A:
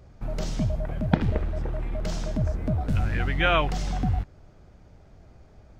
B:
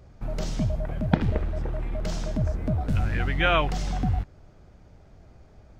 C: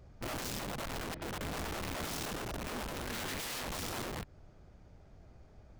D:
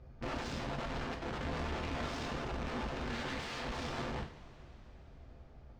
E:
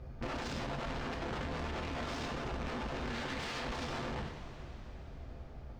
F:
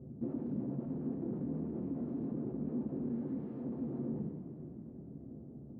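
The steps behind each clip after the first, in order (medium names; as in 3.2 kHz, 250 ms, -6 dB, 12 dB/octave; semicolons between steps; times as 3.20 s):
no audible change
compression 16:1, threshold -26 dBFS, peak gain reduction 14.5 dB; integer overflow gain 29.5 dB; trim -5.5 dB
distance through air 150 m; two-slope reverb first 0.38 s, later 4.3 s, from -22 dB, DRR 1 dB; trim -1 dB
peak limiter -38 dBFS, peak gain reduction 11 dB; trim +7 dB
in parallel at -11 dB: integer overflow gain 36.5 dB; on the sum: Butterworth band-pass 230 Hz, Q 1.2; trim +7 dB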